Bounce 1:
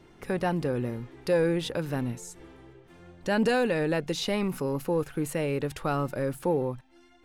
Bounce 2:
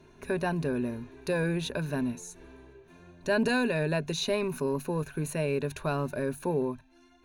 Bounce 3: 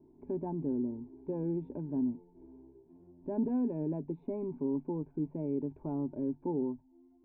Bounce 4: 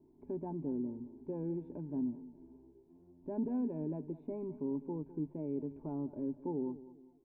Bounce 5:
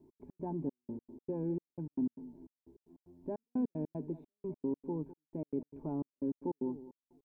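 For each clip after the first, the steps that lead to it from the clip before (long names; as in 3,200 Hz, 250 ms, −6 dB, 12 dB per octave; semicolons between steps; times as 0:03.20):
EQ curve with evenly spaced ripples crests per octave 1.5, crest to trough 11 dB; level −2.5 dB
formant resonators in series u; level +4.5 dB
repeating echo 205 ms, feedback 34%, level −16 dB; level −4 dB
gate pattern "x.x.xxx.." 152 BPM −60 dB; level +2.5 dB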